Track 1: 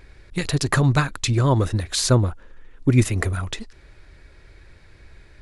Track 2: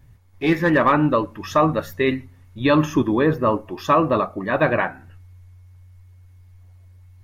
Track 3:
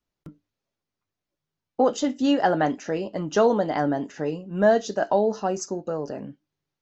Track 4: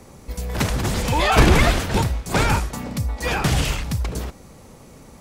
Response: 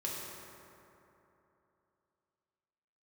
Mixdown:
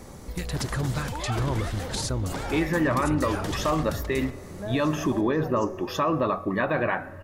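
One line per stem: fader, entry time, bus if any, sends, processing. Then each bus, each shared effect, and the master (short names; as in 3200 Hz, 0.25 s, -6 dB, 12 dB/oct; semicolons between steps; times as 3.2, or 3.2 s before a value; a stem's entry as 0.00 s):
-7.0 dB, 0.00 s, bus A, no send, limiter -14 dBFS, peak gain reduction 8.5 dB
+0.5 dB, 2.10 s, bus A, send -23 dB, compressor, threshold -18 dBFS, peak gain reduction 6.5 dB
-17.5 dB, 0.00 s, bus B, send -7 dB, dry
+1.0 dB, 0.00 s, bus B, no send, bell 2500 Hz -7 dB 0.26 oct; compressor 2:1, threshold -27 dBFS, peak gain reduction 10.5 dB
bus A: 0.0 dB, limiter -16.5 dBFS, peak gain reduction 8 dB
bus B: 0.0 dB, compressor 2:1, threshold -37 dBFS, peak gain reduction 11 dB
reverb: on, RT60 3.1 s, pre-delay 3 ms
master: dry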